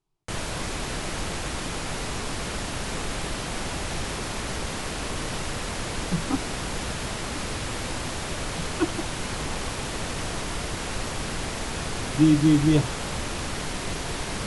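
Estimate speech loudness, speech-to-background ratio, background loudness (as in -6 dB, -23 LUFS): -23.0 LUFS, 7.5 dB, -30.5 LUFS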